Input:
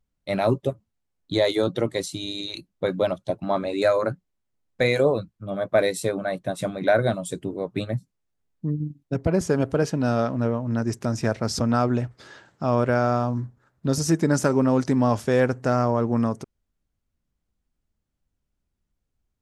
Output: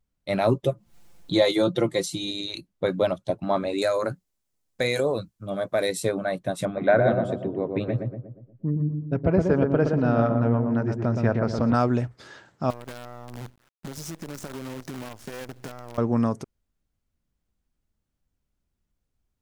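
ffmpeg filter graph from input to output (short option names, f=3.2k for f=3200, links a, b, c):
-filter_complex "[0:a]asettb=1/sr,asplit=3[a][b][c];[a]atrim=end=0.644[d];[b]atrim=start=0.64:end=2.31,asetpts=PTS-STARTPTS,afade=t=in:d=0.004:c=qsin,afade=t=out:st=1.666:d=0.004:c=qsin,equalizer=f=1.7k:t=o:w=0.25:g=-2.5,aecho=1:1:5.8:0.61,atrim=end_sample=73647,acompressor=mode=upward:threshold=-29dB:ratio=2.5:attack=3.2:release=140:knee=2.83:detection=peak[e];[c]atrim=start=2.306[f];[d][e]acrossfade=d=0.004:c1=hsin:c2=qsin[g];[g][f]acrossfade=d=0.004:c1=qsin:c2=hsin,asettb=1/sr,asplit=3[h][i][j];[h]atrim=end=3.784[k];[i]atrim=start=3.78:end=5.89,asetpts=PTS-STARTPTS,afade=t=in:d=0.004:c=qsin,afade=t=out:st=2.106:d=0.004:c=qsin,bass=f=250:g=-2,treble=f=4k:g=9,acompressor=threshold=-22dB:ratio=2:attack=3.2:release=140:knee=1:detection=peak[l];[j]atrim=start=5.886[m];[k][l]acrossfade=d=0.004:c1=hsin:c2=qsin[n];[n][m]acrossfade=d=0.004:c1=qsin:c2=hsin,asettb=1/sr,asplit=3[o][p][q];[o]atrim=end=6.654[r];[p]atrim=start=6.65:end=11.74,asetpts=PTS-STARTPTS,afade=t=in:d=0.004:c=qsin,afade=t=out:st=5.086:d=0.004:c=qsin,lowpass=2.5k,asplit=2[s][t];[t]adelay=119,lowpass=f=1.1k:p=1,volume=-3.5dB,asplit=2[u][v];[v]adelay=119,lowpass=f=1.1k:p=1,volume=0.51,asplit=2[w][x];[x]adelay=119,lowpass=f=1.1k:p=1,volume=0.51,asplit=2[y][z];[z]adelay=119,lowpass=f=1.1k:p=1,volume=0.51,asplit=2[aa][ab];[ab]adelay=119,lowpass=f=1.1k:p=1,volume=0.51,asplit=2[ac][ad];[ad]adelay=119,lowpass=f=1.1k:p=1,volume=0.51,asplit=2[ae][af];[af]adelay=119,lowpass=f=1.1k:p=1,volume=0.51[ag];[s][u][w][y][aa][ac][ae][ag]amix=inputs=8:normalize=0,atrim=end_sample=224469[ah];[q]atrim=start=11.736[ai];[r][ah]acrossfade=d=0.004:c1=hsin:c2=qsin[aj];[aj][ai]acrossfade=d=0.004:c1=qsin:c2=hsin,asettb=1/sr,asplit=3[ak][al][am];[ak]atrim=end=12.704[an];[al]atrim=start=12.7:end=15.98,asetpts=PTS-STARTPTS,afade=t=in:d=0.004:c=qsin,afade=t=out:st=3.276:d=0.004:c=qsin,acompressor=threshold=-33dB:ratio=16:attack=3.2:release=140:knee=1:detection=peak,acrusher=bits=7:dc=4:mix=0:aa=0.000001[ao];[am]atrim=start=15.976[ap];[an][ao]acrossfade=d=0.004:c1=hsin:c2=qsin[aq];[aq][ap]acrossfade=d=0.004:c1=qsin:c2=hsin"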